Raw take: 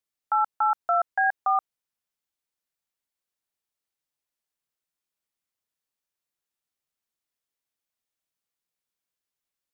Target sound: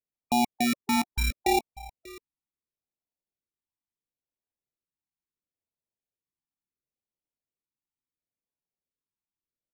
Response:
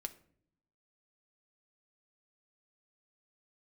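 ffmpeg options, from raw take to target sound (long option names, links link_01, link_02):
-filter_complex "[0:a]adynamicsmooth=sensitivity=1.5:basefreq=990,acrusher=samples=28:mix=1:aa=0.000001,asplit=2[link_01][link_02];[link_02]aecho=0:1:590:0.112[link_03];[link_01][link_03]amix=inputs=2:normalize=0,afftfilt=real='re*(1-between(b*sr/1024,510*pow(1700/510,0.5+0.5*sin(2*PI*0.73*pts/sr))/1.41,510*pow(1700/510,0.5+0.5*sin(2*PI*0.73*pts/sr))*1.41))':imag='im*(1-between(b*sr/1024,510*pow(1700/510,0.5+0.5*sin(2*PI*0.73*pts/sr))/1.41,510*pow(1700/510,0.5+0.5*sin(2*PI*0.73*pts/sr))*1.41))':win_size=1024:overlap=0.75"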